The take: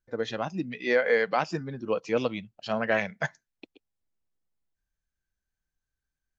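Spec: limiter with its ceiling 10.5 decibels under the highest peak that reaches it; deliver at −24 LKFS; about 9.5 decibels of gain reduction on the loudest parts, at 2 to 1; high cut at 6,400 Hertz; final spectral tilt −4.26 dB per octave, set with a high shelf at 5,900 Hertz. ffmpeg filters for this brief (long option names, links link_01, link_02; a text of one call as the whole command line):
ffmpeg -i in.wav -af "lowpass=6400,highshelf=frequency=5900:gain=-7.5,acompressor=threshold=-37dB:ratio=2,volume=17.5dB,alimiter=limit=-13dB:level=0:latency=1" out.wav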